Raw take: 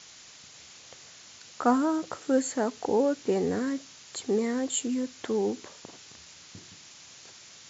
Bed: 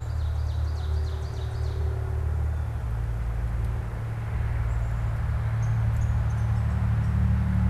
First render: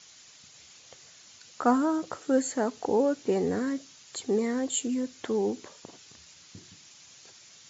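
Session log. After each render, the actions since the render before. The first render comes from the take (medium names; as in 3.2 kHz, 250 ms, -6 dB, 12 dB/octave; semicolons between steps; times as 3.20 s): noise reduction 6 dB, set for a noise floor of -51 dBFS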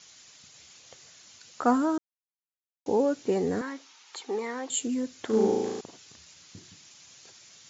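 1.98–2.86 s: mute; 3.61–4.70 s: cabinet simulation 440–6100 Hz, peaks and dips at 610 Hz -8 dB, 880 Hz +10 dB, 1.3 kHz +4 dB, 2.3 kHz +3 dB, 4.8 kHz -3 dB; 5.26–5.81 s: flutter echo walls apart 6.2 m, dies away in 1.3 s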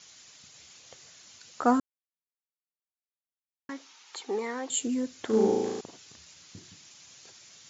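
1.80–3.69 s: mute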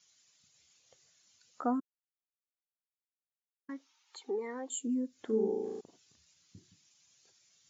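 compression 2:1, threshold -37 dBFS, peak gain reduction 10.5 dB; spectral contrast expander 1.5:1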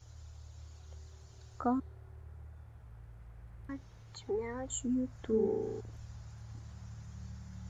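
add bed -23.5 dB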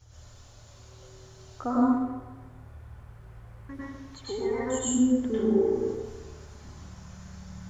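on a send: tape echo 146 ms, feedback 48%, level -9.5 dB; on the sum: plate-style reverb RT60 0.76 s, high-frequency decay 0.9×, pre-delay 90 ms, DRR -8 dB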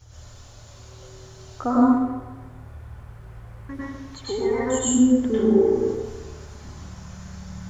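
trim +6 dB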